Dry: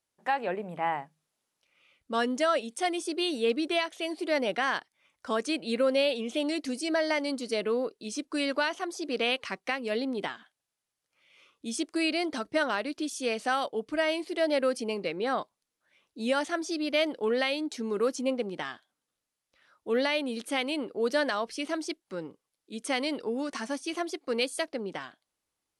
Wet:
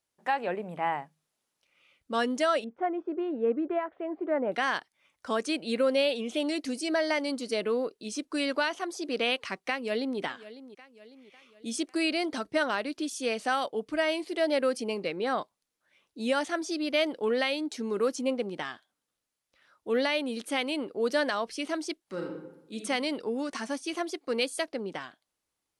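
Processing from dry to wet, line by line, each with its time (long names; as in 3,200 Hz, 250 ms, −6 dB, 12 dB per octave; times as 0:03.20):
0:02.64–0:04.52: low-pass filter 1,500 Hz 24 dB per octave
0:09.58–0:10.19: delay throw 550 ms, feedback 50%, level −16 dB
0:22.05–0:22.75: thrown reverb, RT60 0.89 s, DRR 0 dB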